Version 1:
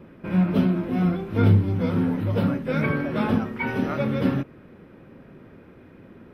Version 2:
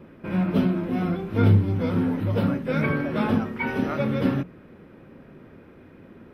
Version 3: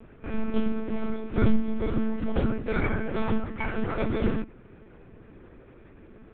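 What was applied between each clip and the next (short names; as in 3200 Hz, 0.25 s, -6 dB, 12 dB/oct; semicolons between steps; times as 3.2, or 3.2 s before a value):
notches 60/120/180 Hz
monotone LPC vocoder at 8 kHz 220 Hz; gain -2 dB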